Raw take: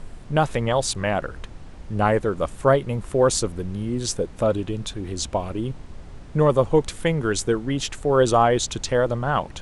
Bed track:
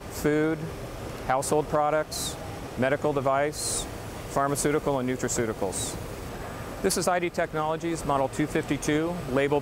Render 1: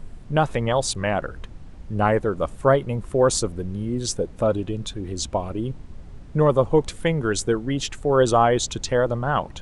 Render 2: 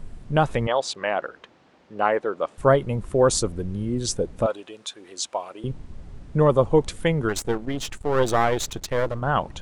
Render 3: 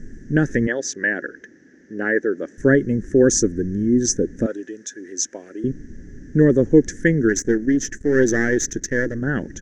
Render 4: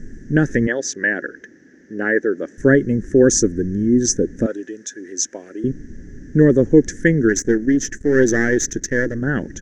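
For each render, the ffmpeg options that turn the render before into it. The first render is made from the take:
-af "afftdn=nr=6:nf=-40"
-filter_complex "[0:a]asettb=1/sr,asplit=3[a][b][c];[a]atrim=end=0.674[d];[b]atrim=start=0.67:end=2.58,asetpts=PTS-STARTPTS,afade=t=in:d=0.004:c=qsin,afade=t=out:st=1.906:d=0.004:c=qsin,highpass=400,lowpass=4.9k[e];[c]atrim=start=2.576[f];[d][e]acrossfade=d=0.004:c1=hsin:c2=qsin[g];[g][f]acrossfade=d=0.004:c1=qsin:c2=hsin,asettb=1/sr,asplit=3[h][i][j];[h]atrim=end=4.464[k];[i]atrim=start=4.46:end=5.64,asetpts=PTS-STARTPTS,afade=t=in:d=0.004:c=qsin,afade=t=out:st=1.176:d=0.004:c=qsin,highpass=680[l];[j]atrim=start=5.636[m];[k][l]acrossfade=d=0.004:c1=hsin:c2=qsin[n];[n][m]acrossfade=d=0.004:c1=qsin:c2=hsin,asplit=3[o][p][q];[o]afade=t=out:st=7.28:d=0.02[r];[p]aeval=exprs='if(lt(val(0),0),0.251*val(0),val(0))':c=same,afade=t=in:st=7.28:d=0.02,afade=t=out:st=9.21:d=0.02[s];[q]afade=t=in:st=9.21:d=0.02[t];[r][s][t]amix=inputs=3:normalize=0"
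-af "firequalizer=gain_entry='entry(120,0);entry(270,13);entry(390,8);entry(670,-13);entry(1100,-23);entry(1700,15);entry(2400,-11);entry(4200,-13);entry(6000,13);entry(8800,-11)':delay=0.05:min_phase=1"
-af "volume=2dB,alimiter=limit=-1dB:level=0:latency=1"

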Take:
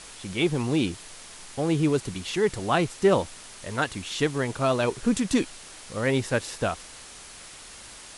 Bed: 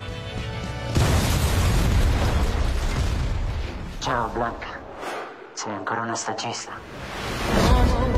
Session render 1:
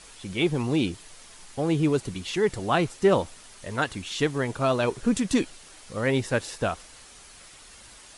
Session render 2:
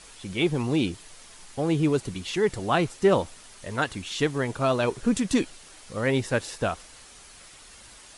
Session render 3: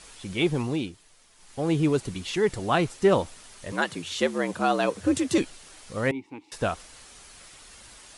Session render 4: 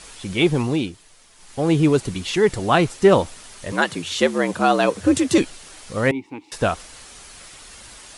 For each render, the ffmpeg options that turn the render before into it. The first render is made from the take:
-af "afftdn=nr=6:nf=-45"
-af anull
-filter_complex "[0:a]asettb=1/sr,asplit=3[a][b][c];[a]atrim=end=3.724[d];[b]atrim=start=3.72:end=5.38,asetpts=PTS-STARTPTS,afade=t=in:d=0.004:c=qsin,afade=t=out:st=1.656:d=0.004:c=qsin,afreqshift=74[e];[c]atrim=start=5.376[f];[d][e]acrossfade=d=0.004:c1=hsin:c2=qsin[g];[g][f]acrossfade=d=0.004:c1=qsin:c2=hsin,asettb=1/sr,asplit=3[h][i][j];[h]atrim=end=6.114[k];[i]atrim=start=6.11:end=6.52,asetpts=PTS-STARTPTS,afade=t=in:d=0.004:c=qsin,afade=t=out:st=0.406:d=0.004:c=qsin,asplit=3[l][m][n];[l]bandpass=f=300:t=q:w=8,volume=0dB[o];[m]bandpass=f=870:t=q:w=8,volume=-6dB[p];[n]bandpass=f=2.24k:t=q:w=8,volume=-9dB[q];[o][p][q]amix=inputs=3:normalize=0[r];[j]atrim=start=6.516[s];[k][r]acrossfade=d=0.004:c1=hsin:c2=qsin[t];[t][s]acrossfade=d=0.004:c1=qsin:c2=hsin,asplit=3[u][v][w];[u]atrim=end=0.92,asetpts=PTS-STARTPTS,afade=t=out:st=0.58:d=0.34:silence=0.298538[x];[v]atrim=start=0.92:end=1.35,asetpts=PTS-STARTPTS,volume=-10.5dB[y];[w]atrim=start=1.35,asetpts=PTS-STARTPTS,afade=t=in:d=0.34:silence=0.298538[z];[x][y][z]concat=n=3:v=0:a=1"
-af "volume=6.5dB"

